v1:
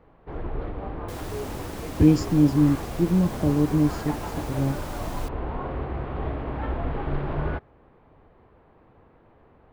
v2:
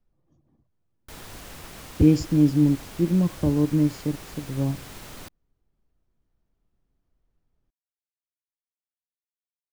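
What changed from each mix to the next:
first sound: muted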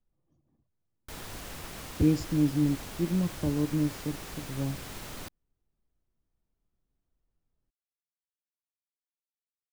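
speech −7.0 dB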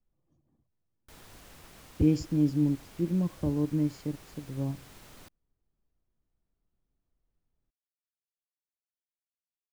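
background −10.5 dB

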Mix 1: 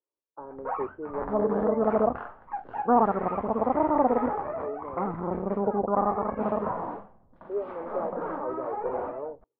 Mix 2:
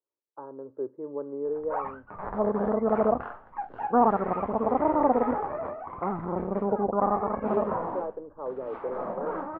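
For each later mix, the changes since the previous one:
background: entry +1.05 s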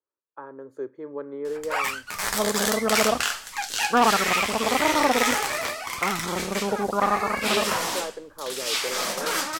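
master: remove low-pass filter 1,000 Hz 24 dB per octave

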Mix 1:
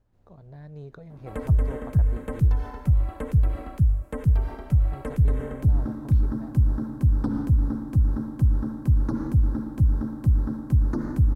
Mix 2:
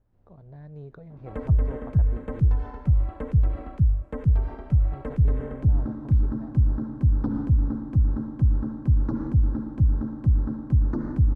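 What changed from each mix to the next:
master: add head-to-tape spacing loss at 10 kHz 21 dB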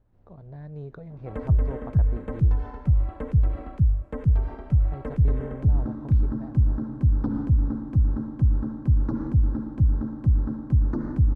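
speech +3.5 dB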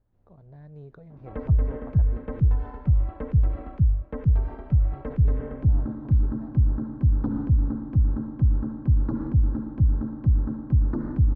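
speech −6.0 dB
background: add high-frequency loss of the air 180 metres

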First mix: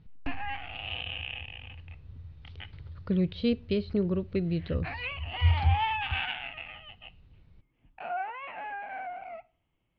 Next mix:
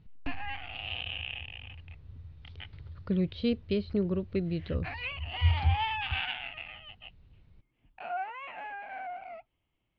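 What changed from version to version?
background: remove high-frequency loss of the air 190 metres
reverb: off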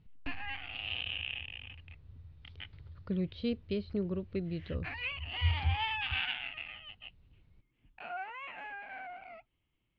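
speech −5.0 dB
background: add parametric band 710 Hz −7 dB 0.97 octaves

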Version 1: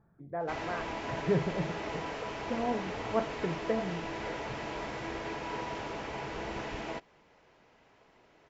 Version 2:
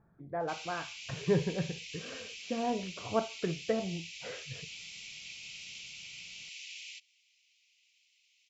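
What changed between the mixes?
background: add Butterworth high-pass 2,300 Hz 72 dB per octave
master: add high-shelf EQ 5,300 Hz +11.5 dB

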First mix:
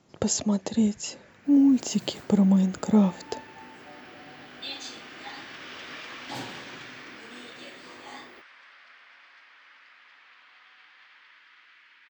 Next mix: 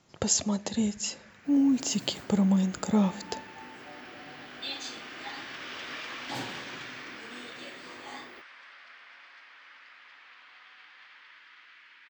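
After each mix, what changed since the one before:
speech: add parametric band 300 Hz −7 dB 3 octaves
reverb: on, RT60 0.80 s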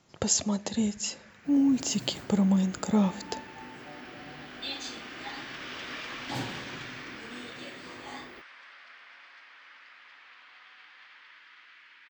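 second sound: add low-shelf EQ 160 Hz +11.5 dB

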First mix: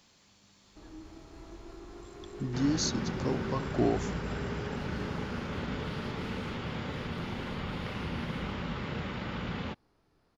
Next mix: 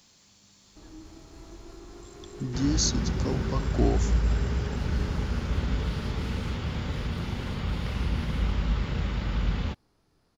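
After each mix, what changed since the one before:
second sound: remove high-pass filter 130 Hz 12 dB per octave
master: add bass and treble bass +3 dB, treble +8 dB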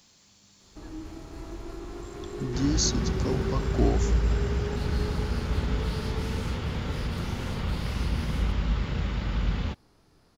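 first sound +7.0 dB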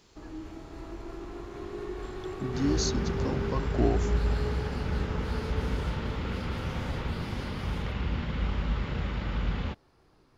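first sound: entry −0.60 s
master: add bass and treble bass −3 dB, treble −8 dB

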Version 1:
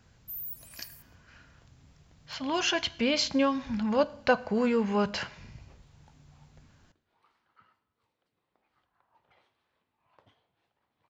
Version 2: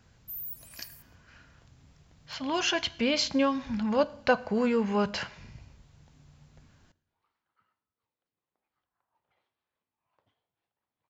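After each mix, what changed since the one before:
second sound −11.0 dB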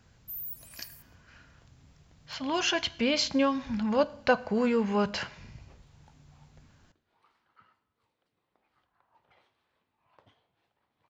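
second sound +12.0 dB

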